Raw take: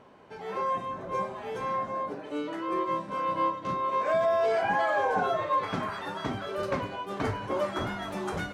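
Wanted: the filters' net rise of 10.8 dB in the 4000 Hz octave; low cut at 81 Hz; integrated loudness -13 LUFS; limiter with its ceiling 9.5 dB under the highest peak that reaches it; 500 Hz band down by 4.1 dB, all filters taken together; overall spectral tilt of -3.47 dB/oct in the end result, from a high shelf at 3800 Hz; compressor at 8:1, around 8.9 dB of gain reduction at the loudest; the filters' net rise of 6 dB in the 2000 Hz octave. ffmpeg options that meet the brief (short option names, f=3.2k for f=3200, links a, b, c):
-af "highpass=81,equalizer=f=500:t=o:g=-6.5,equalizer=f=2k:t=o:g=5,highshelf=f=3.8k:g=9,equalizer=f=4k:t=o:g=7,acompressor=threshold=-31dB:ratio=8,volume=24dB,alimiter=limit=-5.5dB:level=0:latency=1"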